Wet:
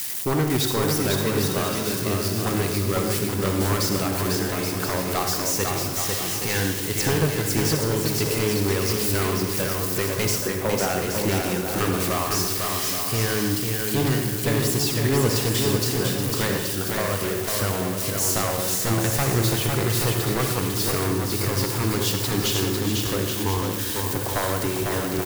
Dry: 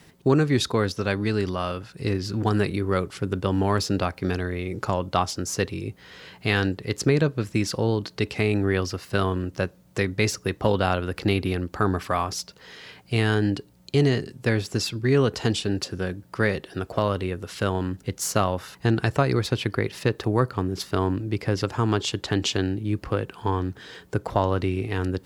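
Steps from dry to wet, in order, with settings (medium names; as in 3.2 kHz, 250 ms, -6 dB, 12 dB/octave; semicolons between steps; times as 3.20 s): zero-crossing glitches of -19.5 dBFS; 10.38–10.89 s: Chebyshev band-pass 190–1900 Hz, order 3; wavefolder -14.5 dBFS; bouncing-ball echo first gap 500 ms, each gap 0.65×, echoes 5; on a send at -4 dB: reverberation RT60 0.80 s, pre-delay 53 ms; on the sum: trim -2 dB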